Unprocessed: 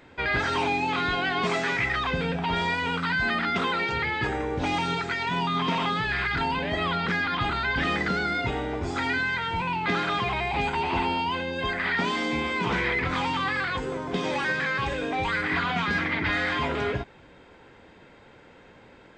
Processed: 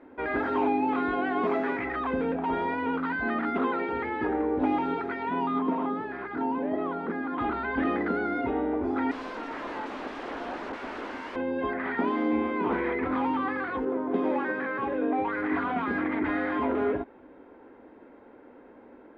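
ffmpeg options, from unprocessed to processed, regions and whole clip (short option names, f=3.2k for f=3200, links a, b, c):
-filter_complex "[0:a]asettb=1/sr,asplit=3[a][b][c];[a]atrim=end=5.594[d];[b]atrim=start=5.59:end=7.38,asetpts=PTS-STARTPTS,afade=t=in:d=0.004:c=qsin,afade=t=out:st=1.786:d=0.004:c=qsin,highpass=140,equalizer=f=2.9k:t=o:w=2.4:g=-9[e];[c]atrim=start=7.376[f];[d][e]acrossfade=d=0.004:c1=hsin:c2=qsin[g];[g][f]acrossfade=d=0.004:c1=qsin:c2=hsin,asettb=1/sr,asplit=3[h][i][j];[h]atrim=end=9.114[k];[i]atrim=start=9.11:end=11.36,asetpts=PTS-STARTPTS,afade=t=in:d=0.004:c=qsin,afade=t=out:st=2.246:d=0.004:c=qsin,aemphasis=mode=reproduction:type=cd,aeval=exprs='(mod(18.8*val(0)+1,2)-1)/18.8':c=same[l];[j]atrim=start=11.356[m];[k][l]acrossfade=d=0.004:c1=hsin:c2=qsin[n];[n][m]acrossfade=d=0.004:c1=qsin:c2=hsin,asettb=1/sr,asplit=3[o][p][q];[o]atrim=end=13.854[r];[p]atrim=start=13.85:end=15.38,asetpts=PTS-STARTPTS,afade=t=in:d=0.004:c=qsin,afade=t=out:st=1.526:d=0.004:c=qsin,highpass=100,adynamicequalizer=threshold=0.00794:dfrequency=3000:dqfactor=0.7:tfrequency=3000:tqfactor=0.7:attack=5:release=100:ratio=0.375:range=2.5:mode=cutabove:tftype=highshelf[s];[q]atrim=start=15.376[t];[r][s]acrossfade=d=0.004:c1=hsin:c2=qsin[u];[u][t]acrossfade=d=0.004:c1=qsin:c2=hsin,lowpass=1.2k,lowshelf=f=200:t=q:w=3:g=-9"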